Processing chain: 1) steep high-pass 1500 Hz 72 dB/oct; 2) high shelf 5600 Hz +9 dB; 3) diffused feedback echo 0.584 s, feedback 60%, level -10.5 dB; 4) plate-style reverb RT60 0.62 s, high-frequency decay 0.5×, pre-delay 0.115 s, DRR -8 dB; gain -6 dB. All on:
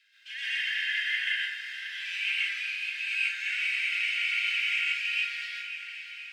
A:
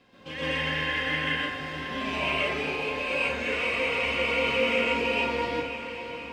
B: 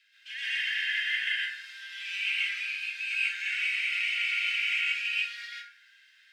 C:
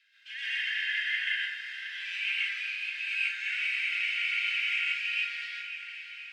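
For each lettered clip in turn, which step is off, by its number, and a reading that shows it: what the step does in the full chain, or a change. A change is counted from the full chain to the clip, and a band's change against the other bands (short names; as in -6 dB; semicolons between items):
1, 1 kHz band +18.5 dB; 3, momentary loudness spread change +3 LU; 2, loudness change -1.5 LU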